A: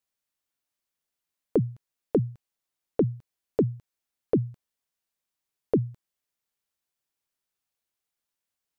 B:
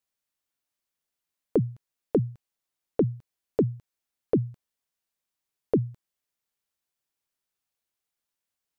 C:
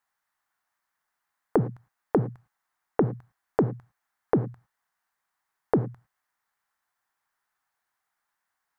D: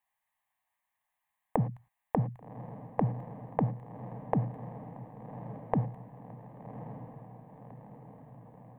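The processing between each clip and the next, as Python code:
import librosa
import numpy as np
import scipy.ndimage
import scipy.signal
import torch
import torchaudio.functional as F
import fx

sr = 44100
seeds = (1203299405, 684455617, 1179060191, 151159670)

y1 = x
y2 = fx.band_shelf(y1, sr, hz=1200.0, db=14.5, octaves=1.7)
y2 = fx.rev_gated(y2, sr, seeds[0], gate_ms=130, shape='flat', drr_db=12.0)
y3 = fx.fixed_phaser(y2, sr, hz=1400.0, stages=6)
y3 = fx.echo_diffused(y3, sr, ms=1133, feedback_pct=59, wet_db=-11.0)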